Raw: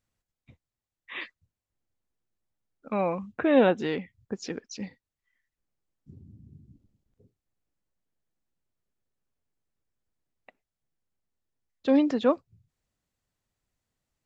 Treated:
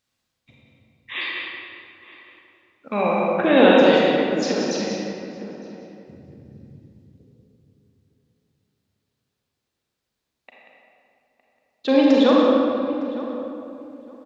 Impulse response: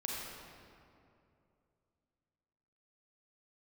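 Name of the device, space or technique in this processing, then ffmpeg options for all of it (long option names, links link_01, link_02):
PA in a hall: -filter_complex "[0:a]highpass=frequency=180:poles=1,equalizer=frequency=3900:width_type=o:width=1.2:gain=7.5,aecho=1:1:186:0.398[link_01];[1:a]atrim=start_sample=2205[link_02];[link_01][link_02]afir=irnorm=-1:irlink=0,asettb=1/sr,asplit=3[link_03][link_04][link_05];[link_03]atrim=end=3.934[link_06];[link_04]atrim=start=3.93:end=4.36,asetpts=PTS-STARTPTS,afade=type=in:duration=0.004:curve=qsin,afade=type=out:start_time=0.426:duration=0.004:curve=qsin,highshelf=frequency=5000:gain=6[link_07];[link_05]atrim=start=4.356[link_08];[link_06][link_07]acrossfade=duration=0.004:curve1=hsin:curve2=qsin[link_09];[link_09][link_08]acrossfade=duration=0.004:curve1=qsin:curve2=hsin,asplit=2[link_10][link_11];[link_11]adelay=910,lowpass=frequency=1400:poles=1,volume=-14dB,asplit=2[link_12][link_13];[link_13]adelay=910,lowpass=frequency=1400:poles=1,volume=0.21[link_14];[link_10][link_12][link_14]amix=inputs=3:normalize=0,volume=6.5dB"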